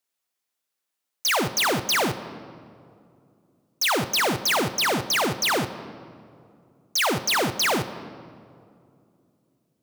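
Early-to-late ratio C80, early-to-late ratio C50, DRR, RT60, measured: 13.5 dB, 12.5 dB, 11.0 dB, 2.5 s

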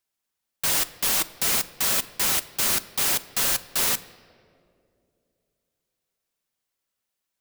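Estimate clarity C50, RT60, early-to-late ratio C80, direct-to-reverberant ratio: 17.0 dB, 2.5 s, 18.0 dB, 10.5 dB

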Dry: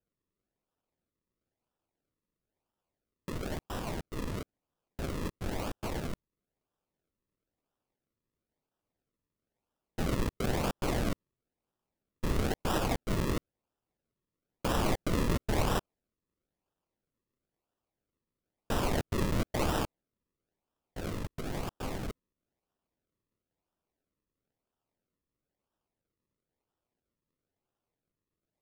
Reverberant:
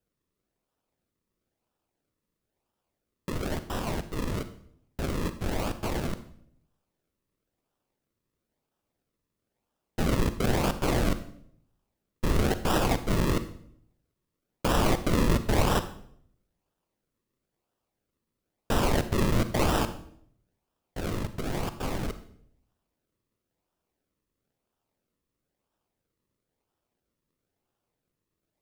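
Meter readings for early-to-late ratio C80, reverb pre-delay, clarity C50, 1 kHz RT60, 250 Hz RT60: 15.5 dB, 36 ms, 12.5 dB, 0.60 s, 0.80 s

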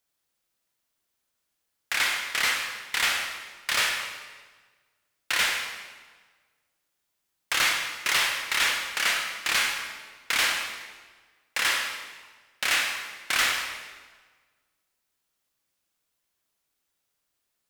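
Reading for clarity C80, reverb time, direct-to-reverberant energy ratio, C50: 6.0 dB, 1.4 s, 2.0 dB, 4.0 dB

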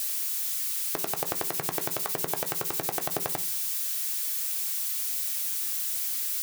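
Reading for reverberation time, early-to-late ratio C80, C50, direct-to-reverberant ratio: 0.50 s, 23.0 dB, 18.5 dB, 6.5 dB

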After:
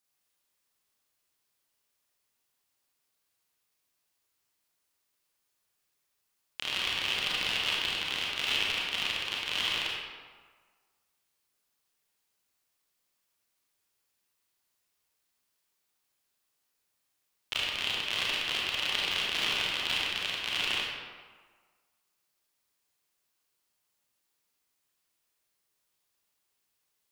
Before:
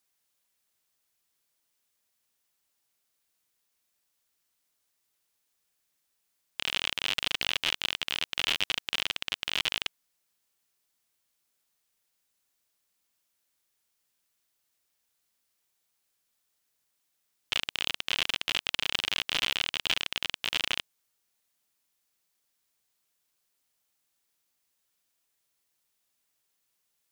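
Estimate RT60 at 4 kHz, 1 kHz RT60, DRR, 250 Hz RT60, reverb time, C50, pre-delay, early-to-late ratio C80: 0.95 s, 1.6 s, −4.5 dB, 1.4 s, 1.5 s, −2.0 dB, 27 ms, 1.0 dB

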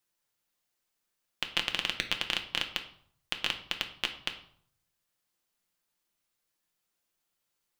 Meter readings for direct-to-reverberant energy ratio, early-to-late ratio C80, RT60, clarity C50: 4.0 dB, 14.5 dB, 0.60 s, 11.0 dB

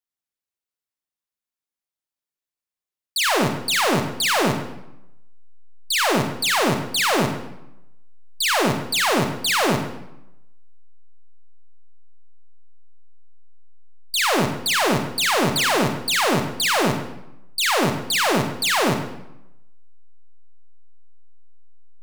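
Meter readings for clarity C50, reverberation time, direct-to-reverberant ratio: 6.5 dB, 0.85 s, 5.0 dB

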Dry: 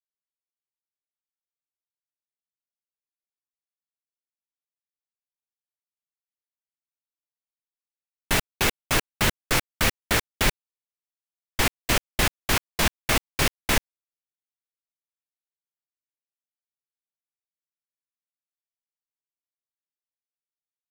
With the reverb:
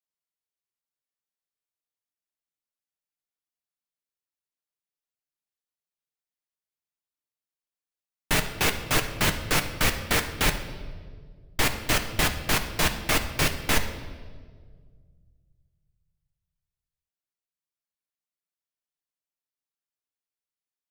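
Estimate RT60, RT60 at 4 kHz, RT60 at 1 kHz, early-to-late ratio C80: 1.8 s, 1.3 s, 1.5 s, 11.5 dB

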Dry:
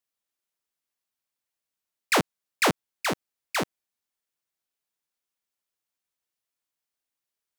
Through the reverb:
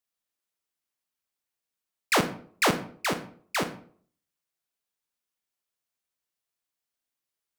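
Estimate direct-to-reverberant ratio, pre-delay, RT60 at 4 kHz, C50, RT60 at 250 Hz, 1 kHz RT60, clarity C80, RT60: 9.0 dB, 30 ms, 0.35 s, 11.5 dB, 0.55 s, 0.50 s, 16.5 dB, 0.55 s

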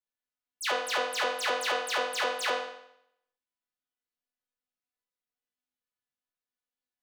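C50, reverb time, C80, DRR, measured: 1.5 dB, 0.75 s, 5.5 dB, −9.0 dB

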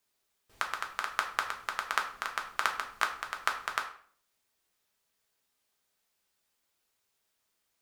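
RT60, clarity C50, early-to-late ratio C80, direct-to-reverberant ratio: 0.50 s, 9.5 dB, 13.0 dB, 2.0 dB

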